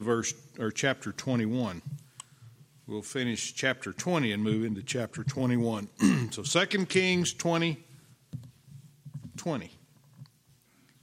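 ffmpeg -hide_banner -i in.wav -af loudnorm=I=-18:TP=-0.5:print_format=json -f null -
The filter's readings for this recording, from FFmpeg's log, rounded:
"input_i" : "-30.0",
"input_tp" : "-10.6",
"input_lra" : "14.8",
"input_thresh" : "-42.3",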